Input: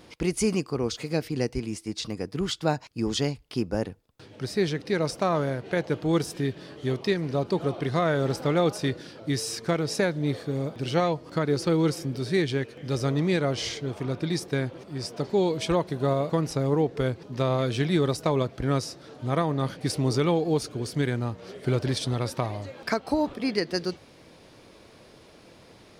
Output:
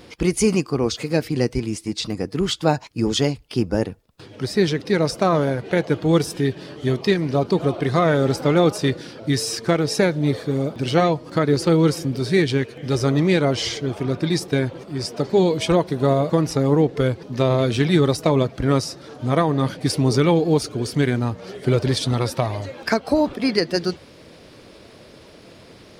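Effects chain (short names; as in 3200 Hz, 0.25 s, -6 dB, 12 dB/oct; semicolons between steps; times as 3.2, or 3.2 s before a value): bin magnitudes rounded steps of 15 dB; gain +7 dB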